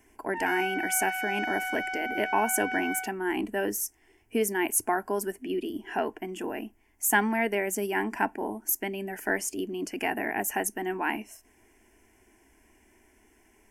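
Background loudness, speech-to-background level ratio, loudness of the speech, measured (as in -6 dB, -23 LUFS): -32.0 LUFS, 2.5 dB, -29.5 LUFS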